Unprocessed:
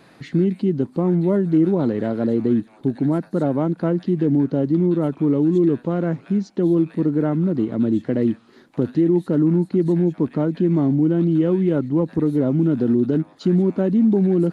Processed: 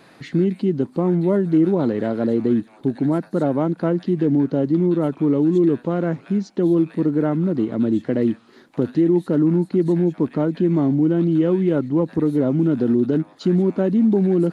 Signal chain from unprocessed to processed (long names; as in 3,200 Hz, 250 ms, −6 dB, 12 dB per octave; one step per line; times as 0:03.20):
low-shelf EQ 210 Hz −5 dB
level +2 dB